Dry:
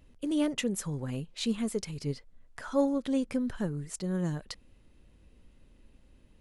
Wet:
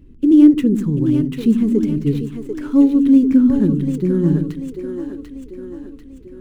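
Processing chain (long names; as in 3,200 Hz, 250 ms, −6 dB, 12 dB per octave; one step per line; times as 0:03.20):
running median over 9 samples
low shelf with overshoot 460 Hz +10 dB, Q 3
on a send: echo with a time of its own for lows and highs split 310 Hz, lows 83 ms, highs 742 ms, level −5 dB
on the sum: level +3 dB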